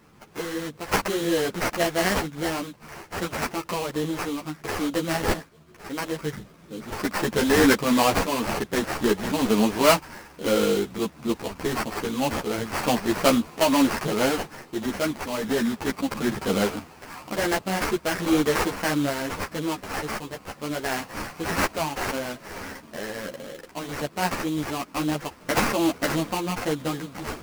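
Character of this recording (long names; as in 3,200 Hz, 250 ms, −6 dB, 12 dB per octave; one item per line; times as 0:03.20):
sample-and-hold tremolo 1.1 Hz
aliases and images of a low sample rate 3,600 Hz, jitter 20%
a shimmering, thickened sound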